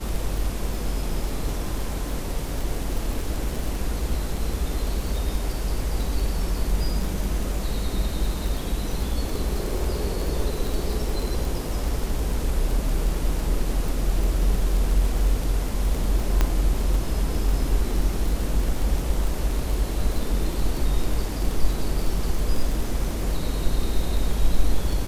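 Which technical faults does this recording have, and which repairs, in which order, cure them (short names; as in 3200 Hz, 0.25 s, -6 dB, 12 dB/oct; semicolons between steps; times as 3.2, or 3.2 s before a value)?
crackle 23/s -25 dBFS
16.41 pop -7 dBFS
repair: de-click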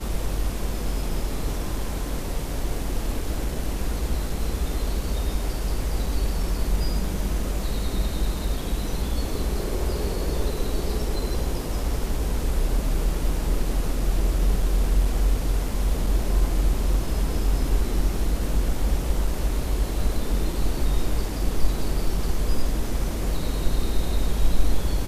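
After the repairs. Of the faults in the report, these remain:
none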